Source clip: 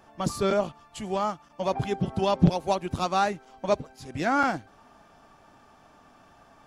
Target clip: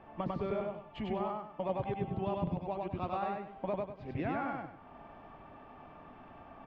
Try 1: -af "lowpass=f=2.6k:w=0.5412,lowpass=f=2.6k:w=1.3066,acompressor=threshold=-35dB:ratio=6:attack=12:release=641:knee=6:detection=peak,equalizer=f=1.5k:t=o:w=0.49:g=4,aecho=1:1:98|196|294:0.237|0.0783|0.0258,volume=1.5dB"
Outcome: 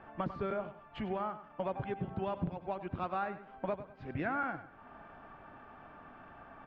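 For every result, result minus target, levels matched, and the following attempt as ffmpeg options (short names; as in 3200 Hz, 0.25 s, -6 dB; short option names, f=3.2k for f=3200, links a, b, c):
echo-to-direct -11 dB; 2000 Hz band +6.0 dB
-af "lowpass=f=2.6k:w=0.5412,lowpass=f=2.6k:w=1.3066,acompressor=threshold=-35dB:ratio=6:attack=12:release=641:knee=6:detection=peak,equalizer=f=1.5k:t=o:w=0.49:g=4,aecho=1:1:98|196|294|392:0.841|0.278|0.0916|0.0302,volume=1.5dB"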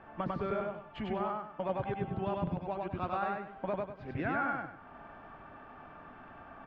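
2000 Hz band +6.5 dB
-af "lowpass=f=2.6k:w=0.5412,lowpass=f=2.6k:w=1.3066,acompressor=threshold=-35dB:ratio=6:attack=12:release=641:knee=6:detection=peak,equalizer=f=1.5k:t=o:w=0.49:g=-6.5,aecho=1:1:98|196|294|392:0.841|0.278|0.0916|0.0302,volume=1.5dB"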